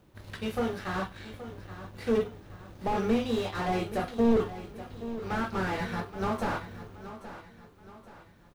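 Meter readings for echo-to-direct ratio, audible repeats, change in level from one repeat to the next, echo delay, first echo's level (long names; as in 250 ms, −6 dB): −12.5 dB, 3, −7.5 dB, 825 ms, −13.5 dB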